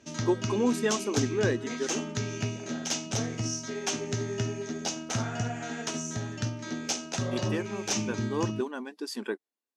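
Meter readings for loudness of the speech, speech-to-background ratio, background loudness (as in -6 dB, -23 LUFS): -32.0 LUFS, 0.5 dB, -32.5 LUFS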